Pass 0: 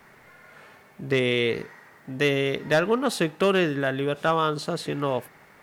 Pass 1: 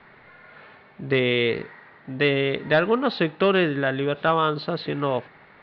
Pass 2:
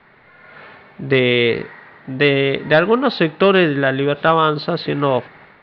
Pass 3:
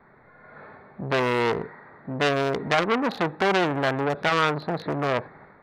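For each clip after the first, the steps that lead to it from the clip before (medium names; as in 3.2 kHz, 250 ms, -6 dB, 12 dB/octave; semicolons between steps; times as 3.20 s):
elliptic low-pass 4.1 kHz, stop band 50 dB; trim +2.5 dB
level rider gain up to 8.5 dB
local Wiener filter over 15 samples; transformer saturation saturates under 2.3 kHz; trim -2 dB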